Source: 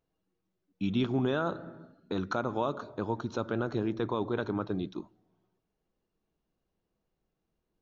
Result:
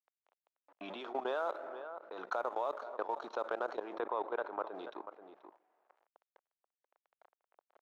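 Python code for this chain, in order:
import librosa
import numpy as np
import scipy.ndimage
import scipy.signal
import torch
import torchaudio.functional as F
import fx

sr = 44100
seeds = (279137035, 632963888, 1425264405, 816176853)

y = fx.law_mismatch(x, sr, coded='A')
y = scipy.signal.sosfilt(scipy.signal.butter(4, 630.0, 'highpass', fs=sr, output='sos'), y)
y = y + 10.0 ** (-23.0 / 20.0) * np.pad(y, (int(483 * sr / 1000.0), 0))[:len(y)]
y = fx.env_lowpass(y, sr, base_hz=1900.0, full_db=-32.0)
y = fx.tilt_shelf(y, sr, db=9.5, hz=970.0)
y = fx.level_steps(y, sr, step_db=20)
y = fx.lowpass(y, sr, hz=2700.0, slope=12, at=(4.0, 4.75))
y = fx.env_flatten(y, sr, amount_pct=50)
y = F.gain(torch.from_numpy(y), 4.5).numpy()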